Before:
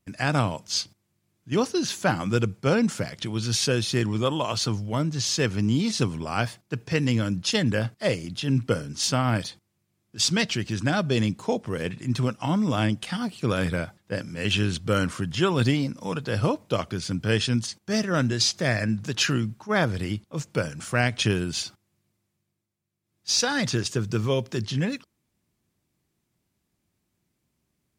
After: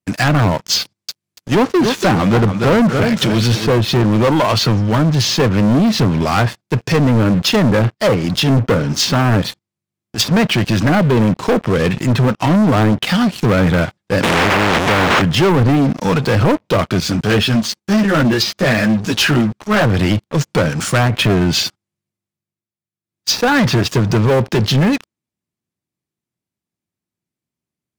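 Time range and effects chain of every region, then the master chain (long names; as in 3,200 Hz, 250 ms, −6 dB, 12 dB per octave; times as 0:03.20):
0:00.80–0:03.78: high-shelf EQ 2,200 Hz +3 dB + feedback echo at a low word length 285 ms, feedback 35%, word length 8 bits, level −10.5 dB
0:14.23–0:15.22: linear delta modulator 16 kbit/s, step −21.5 dBFS + every bin compressed towards the loudest bin 4 to 1
0:17.00–0:19.83: high-pass filter 44 Hz + string-ensemble chorus
whole clip: high-pass filter 90 Hz 12 dB per octave; treble cut that deepens with the level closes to 1,400 Hz, closed at −19.5 dBFS; leveller curve on the samples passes 5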